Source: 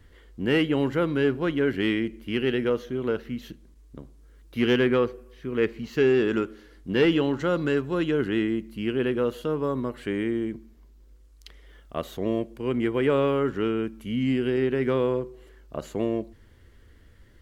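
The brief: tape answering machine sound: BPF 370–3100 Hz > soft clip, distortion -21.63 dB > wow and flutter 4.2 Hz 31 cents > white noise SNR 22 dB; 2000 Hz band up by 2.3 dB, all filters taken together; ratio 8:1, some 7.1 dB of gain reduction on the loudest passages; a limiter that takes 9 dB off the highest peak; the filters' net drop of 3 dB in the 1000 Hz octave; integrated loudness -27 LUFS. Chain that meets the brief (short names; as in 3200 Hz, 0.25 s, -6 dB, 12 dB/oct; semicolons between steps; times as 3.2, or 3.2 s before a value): bell 1000 Hz -6 dB; bell 2000 Hz +5.5 dB; compressor 8:1, threshold -24 dBFS; limiter -24.5 dBFS; BPF 370–3100 Hz; soft clip -27 dBFS; wow and flutter 4.2 Hz 31 cents; white noise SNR 22 dB; gain +11.5 dB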